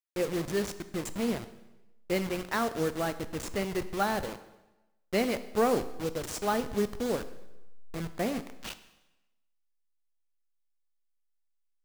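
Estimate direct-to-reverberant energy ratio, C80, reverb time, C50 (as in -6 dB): 12.0 dB, 15.5 dB, 1.0 s, 14.0 dB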